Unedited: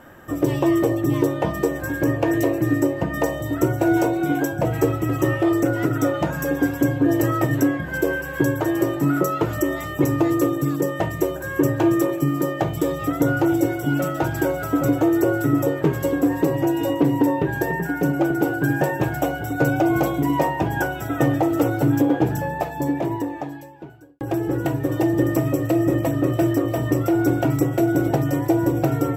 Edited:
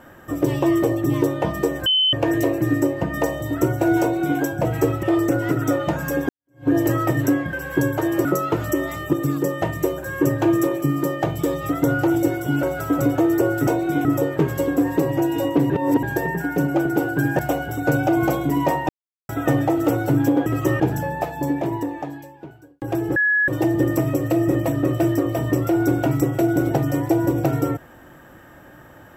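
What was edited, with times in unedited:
1.86–2.13 bleep 3050 Hz -14.5 dBFS
4.01–4.39 copy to 15.5
5.03–5.37 move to 22.19
6.63–7.02 fade in exponential
7.87–8.16 cut
8.88–9.14 cut
10.02–10.51 cut
14.01–14.46 cut
17.15–17.48 reverse
18.84–19.12 cut
20.62–21.02 mute
24.55–24.87 bleep 1690 Hz -15 dBFS

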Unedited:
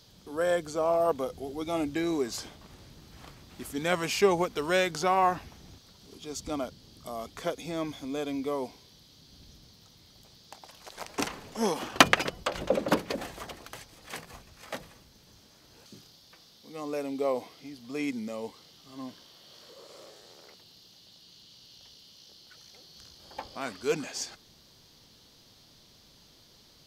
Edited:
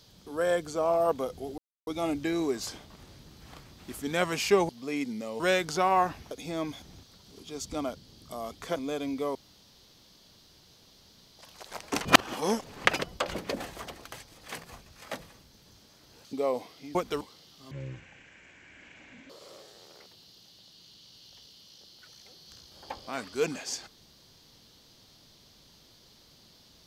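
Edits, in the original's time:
1.58 insert silence 0.29 s
4.4–4.66 swap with 17.76–18.47
7.51–8.02 move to 5.57
8.61–10.65 room tone
11.31–12.11 reverse
12.61–12.96 cut
15.94–17.14 cut
18.97–19.78 speed 51%

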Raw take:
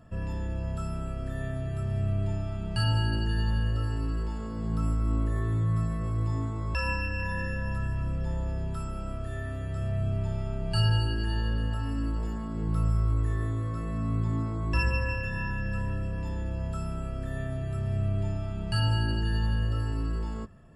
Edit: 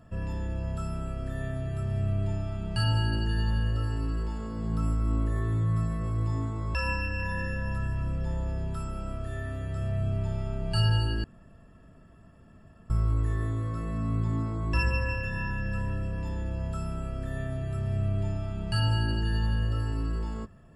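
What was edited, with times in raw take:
11.24–12.9 room tone

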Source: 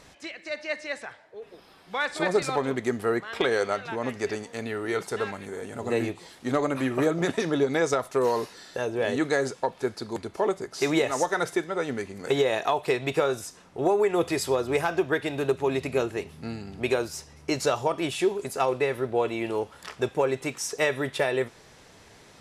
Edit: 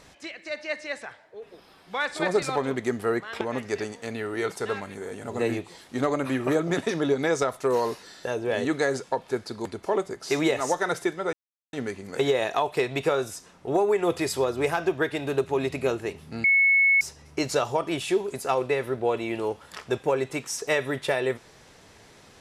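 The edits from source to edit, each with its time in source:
3.41–3.92 cut
11.84 insert silence 0.40 s
16.55–17.12 bleep 2200 Hz -16 dBFS

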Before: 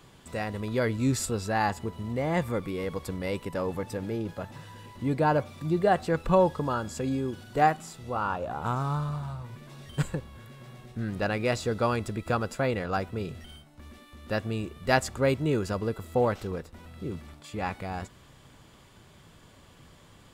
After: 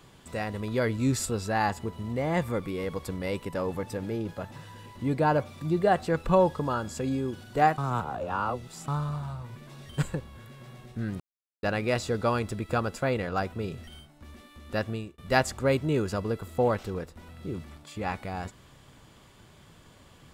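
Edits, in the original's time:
7.78–8.88 reverse
11.2 insert silence 0.43 s
14.46–14.75 fade out

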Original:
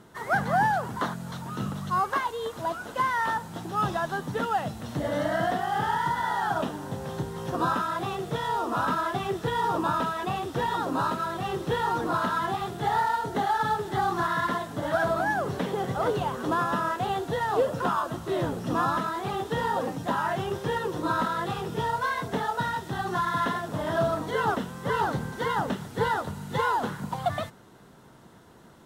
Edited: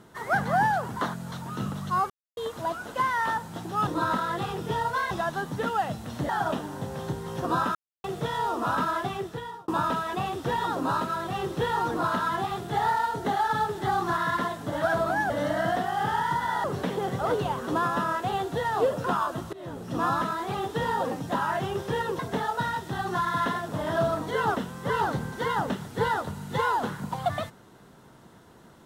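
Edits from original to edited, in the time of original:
2.1–2.37 mute
5.05–6.39 move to 15.4
7.85–8.14 mute
9.08–9.78 fade out
18.29–18.84 fade in, from -22.5 dB
20.95–22.19 move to 3.87

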